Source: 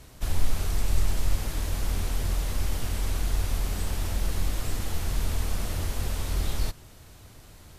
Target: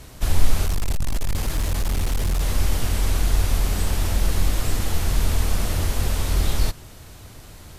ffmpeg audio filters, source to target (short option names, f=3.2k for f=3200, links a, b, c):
-filter_complex "[0:a]asettb=1/sr,asplit=3[a][b][c];[a]atrim=end=0.664[d];[b]atrim=start=0.66:end=2.41,asetpts=PTS-STARTPTS,afade=t=in:d=0.004:c=qsin,afade=t=out:st=1.746:d=0.004:c=qsin,volume=24.5dB,asoftclip=hard,volume=-24.5dB[e];[c]atrim=start=2.406[f];[d][e]acrossfade=d=0.004:c1=hsin:c2=qsin[g];[g][f]acrossfade=d=0.004:c1=qsin:c2=hsin,volume=7dB"